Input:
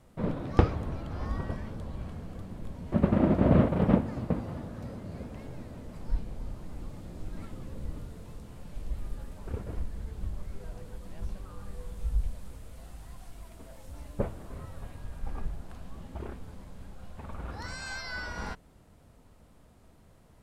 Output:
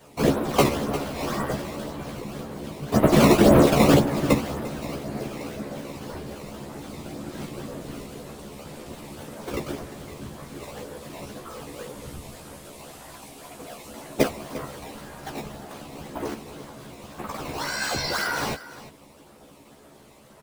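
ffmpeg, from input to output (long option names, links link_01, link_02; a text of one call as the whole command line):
ffmpeg -i in.wav -filter_complex "[0:a]highpass=230,acrossover=split=300|1900[link_01][link_02][link_03];[link_02]acrusher=samples=16:mix=1:aa=0.000001:lfo=1:lforange=25.6:lforate=1.9[link_04];[link_01][link_04][link_03]amix=inputs=3:normalize=0,afftfilt=real='hypot(re,im)*cos(2*PI*random(0))':imag='hypot(re,im)*sin(2*PI*random(1))':win_size=512:overlap=0.75,asplit=2[link_05][link_06];[link_06]adelay=14,volume=-3dB[link_07];[link_05][link_07]amix=inputs=2:normalize=0,aecho=1:1:349:0.158,alimiter=level_in=21.5dB:limit=-1dB:release=50:level=0:latency=1,volume=-4.5dB" out.wav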